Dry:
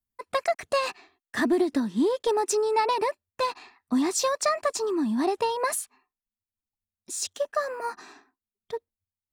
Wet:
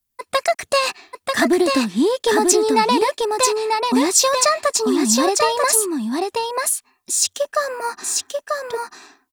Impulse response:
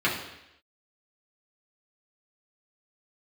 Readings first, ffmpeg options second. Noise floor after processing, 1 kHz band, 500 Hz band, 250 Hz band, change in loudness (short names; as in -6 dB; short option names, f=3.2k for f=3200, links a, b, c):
-74 dBFS, +8.5 dB, +8.0 dB, +7.5 dB, +8.5 dB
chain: -filter_complex "[0:a]highshelf=f=3k:g=8.5,asplit=2[a][b];[b]aecho=0:1:940:0.668[c];[a][c]amix=inputs=2:normalize=0,volume=6dB"